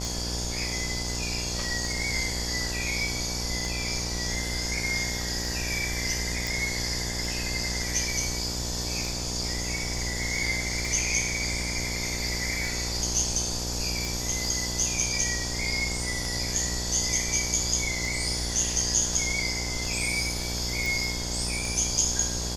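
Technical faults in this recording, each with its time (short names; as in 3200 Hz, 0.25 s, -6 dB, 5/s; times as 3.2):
buzz 60 Hz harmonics 17 -34 dBFS
tick 33 1/3 rpm
6.47 pop
14.05 pop
20.86 pop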